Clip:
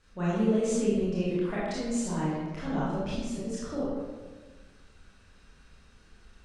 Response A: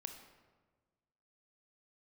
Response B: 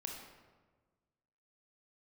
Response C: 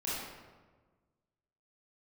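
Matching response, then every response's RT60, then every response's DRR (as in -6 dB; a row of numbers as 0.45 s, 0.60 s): C; 1.4 s, 1.4 s, 1.4 s; 5.5 dB, 0.5 dB, -9.0 dB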